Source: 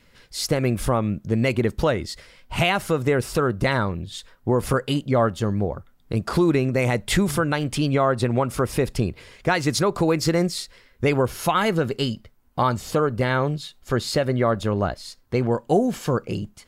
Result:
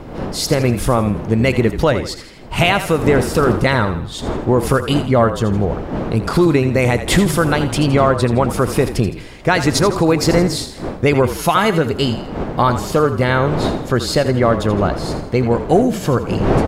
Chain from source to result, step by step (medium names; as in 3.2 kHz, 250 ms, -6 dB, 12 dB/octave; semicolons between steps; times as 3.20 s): wind noise 470 Hz -32 dBFS; frequency-shifting echo 82 ms, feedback 44%, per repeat -35 Hz, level -11 dB; trim +6 dB